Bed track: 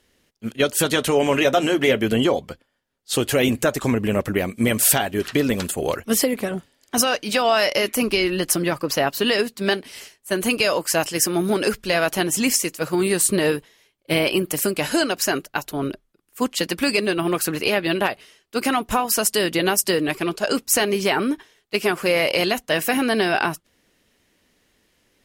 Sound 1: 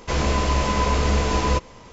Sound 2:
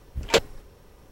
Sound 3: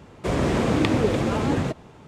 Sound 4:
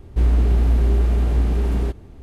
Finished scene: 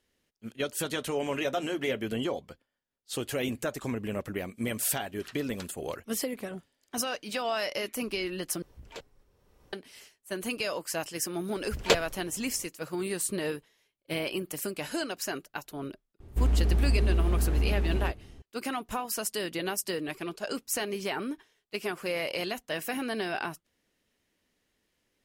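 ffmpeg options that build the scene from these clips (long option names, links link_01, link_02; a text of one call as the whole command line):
ffmpeg -i bed.wav -i cue0.wav -i cue1.wav -i cue2.wav -i cue3.wav -filter_complex "[2:a]asplit=2[link_01][link_02];[0:a]volume=-12.5dB[link_03];[link_01]acompressor=threshold=-38dB:ratio=2:attack=0.13:release=356:knee=1:detection=rms[link_04];[link_03]asplit=2[link_05][link_06];[link_05]atrim=end=8.624[link_07];[link_04]atrim=end=1.11,asetpts=PTS-STARTPTS,volume=-9dB[link_08];[link_06]atrim=start=9.726[link_09];[link_02]atrim=end=1.11,asetpts=PTS-STARTPTS,volume=-3.5dB,afade=type=in:duration=0.004:curve=hsin,afade=type=out:start_time=1.106:duration=0.004:curve=hsin,adelay=11560[link_10];[4:a]atrim=end=2.22,asetpts=PTS-STARTPTS,volume=-8dB,afade=type=in:duration=0.004:curve=hsin,afade=type=out:start_time=2.216:duration=0.004:curve=hsin,adelay=714420S[link_11];[link_07][link_08]acrossfade=duration=0.004:curve1=hsin:curve2=hsin[link_12];[link_12][link_09]acrossfade=duration=0.004:curve1=hsin:curve2=hsin[link_13];[link_13][link_10][link_11]amix=inputs=3:normalize=0" out.wav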